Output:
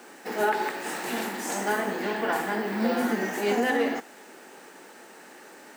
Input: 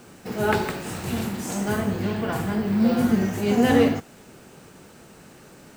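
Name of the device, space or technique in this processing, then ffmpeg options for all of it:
laptop speaker: -af "highpass=frequency=270:width=0.5412,highpass=frequency=270:width=1.3066,equalizer=frequency=850:width_type=o:width=0.28:gain=6.5,equalizer=frequency=1800:width_type=o:width=0.43:gain=8,alimiter=limit=-15dB:level=0:latency=1:release=178"

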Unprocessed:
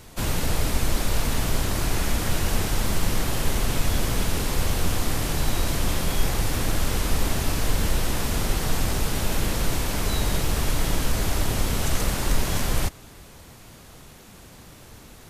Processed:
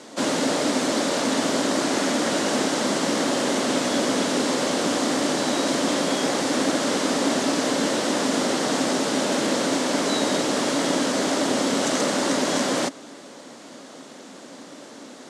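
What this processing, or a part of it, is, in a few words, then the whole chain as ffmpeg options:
television speaker: -af "highpass=frequency=220:width=0.5412,highpass=frequency=220:width=1.3066,equalizer=frequency=270:width_type=q:width=4:gain=9,equalizer=frequency=570:width_type=q:width=4:gain=7,equalizer=frequency=2500:width_type=q:width=4:gain=-5,lowpass=frequency=8200:width=0.5412,lowpass=frequency=8200:width=1.3066,volume=5.5dB"

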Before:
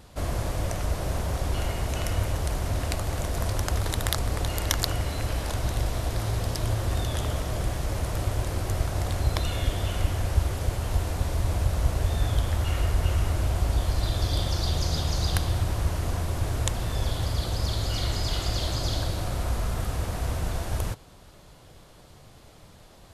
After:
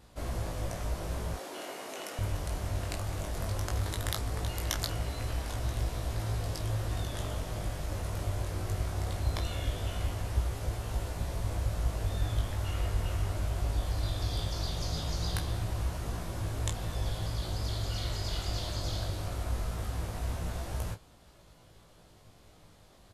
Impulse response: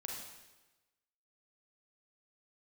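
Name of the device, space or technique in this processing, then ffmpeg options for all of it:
double-tracked vocal: -filter_complex "[0:a]asettb=1/sr,asplit=3[link_01][link_02][link_03];[link_01]atrim=end=1.344[link_04];[link_02]atrim=start=1.34:end=2.19,asetpts=PTS-STARTPTS,afade=type=in:duration=0.004:curve=qsin,afade=type=out:start_time=0.846:duration=0.004:curve=qsin,highpass=frequency=270:width=0.5412,highpass=frequency=270:width=1.3066[link_05];[link_03]atrim=start=2.186[link_06];[link_04][link_05]acrossfade=duration=0.004:curve1=hsin:curve2=qsin[link_07];[link_07][link_06]acrossfade=duration=0.004:curve1=qsin:curve2=hsin,asplit=2[link_08][link_09];[link_09]adelay=30,volume=-12.5dB[link_10];[link_08][link_10]amix=inputs=2:normalize=0,flanger=delay=17.5:depth=2.5:speed=0.19,volume=-4dB"

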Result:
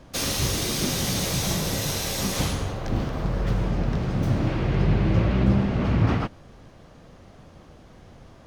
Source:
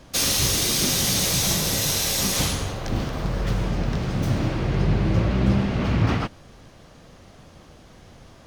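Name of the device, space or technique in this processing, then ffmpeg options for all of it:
behind a face mask: -filter_complex "[0:a]asettb=1/sr,asplit=3[link_01][link_02][link_03];[link_01]atrim=end=4.474[link_04];[link_02]atrim=start=4.47:end=5.44,asetpts=PTS-STARTPTS,afade=type=in:duration=0.004:curve=qsin,afade=type=out:start_time=0.966:duration=0.004:curve=qsin,equalizer=frequency=2700:width_type=o:width=1.5:gain=4[link_05];[link_03]atrim=start=5.436[link_06];[link_04][link_05]acrossfade=duration=0.004:curve1=hsin:curve2=qsin[link_07];[link_07][link_06]acrossfade=duration=0.004:curve1=qsin:curve2=hsin,highshelf=frequency=2300:gain=-7.5"

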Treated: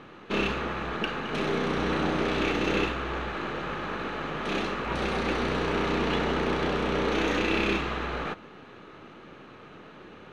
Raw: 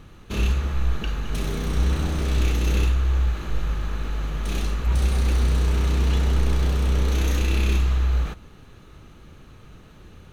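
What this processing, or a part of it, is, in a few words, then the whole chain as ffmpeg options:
crystal radio: -af "highpass=280,lowpass=2700,aeval=exprs='if(lt(val(0),0),0.708*val(0),val(0))':channel_layout=same,volume=8dB"

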